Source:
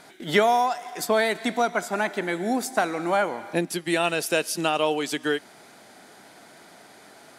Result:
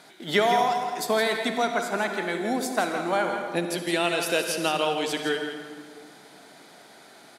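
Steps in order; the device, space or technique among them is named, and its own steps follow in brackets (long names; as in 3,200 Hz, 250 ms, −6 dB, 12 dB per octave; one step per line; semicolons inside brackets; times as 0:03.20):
PA in a hall (high-pass filter 120 Hz; parametric band 3,800 Hz +4.5 dB 0.54 octaves; single-tap delay 165 ms −9 dB; convolution reverb RT60 2.0 s, pre-delay 49 ms, DRR 6.5 dB)
level −2.5 dB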